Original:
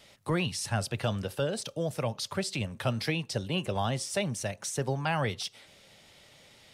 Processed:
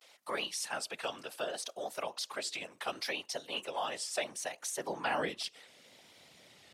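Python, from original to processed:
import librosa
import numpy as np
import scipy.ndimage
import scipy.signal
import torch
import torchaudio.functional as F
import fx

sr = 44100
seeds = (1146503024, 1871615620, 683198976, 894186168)

y = fx.whisperise(x, sr, seeds[0])
y = fx.vibrato(y, sr, rate_hz=0.69, depth_cents=81.0)
y = fx.filter_sweep_highpass(y, sr, from_hz=610.0, to_hz=110.0, start_s=4.54, end_s=6.39, q=0.74)
y = y * 10.0 ** (-2.5 / 20.0)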